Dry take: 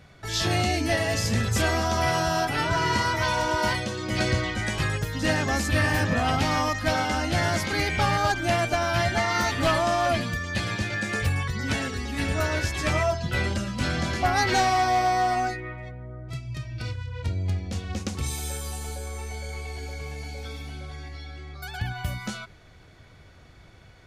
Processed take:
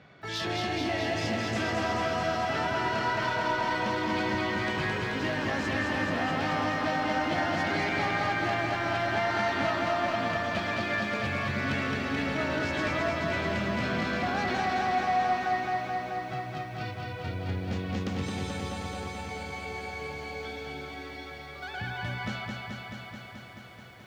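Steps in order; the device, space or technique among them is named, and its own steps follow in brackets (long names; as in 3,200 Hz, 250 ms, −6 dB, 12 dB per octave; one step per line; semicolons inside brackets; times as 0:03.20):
AM radio (band-pass filter 160–3,400 Hz; downward compressor, threshold −27 dBFS, peak gain reduction 8 dB; soft clipping −24 dBFS, distortion −19 dB)
feedback echo at a low word length 216 ms, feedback 80%, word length 11 bits, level −3.5 dB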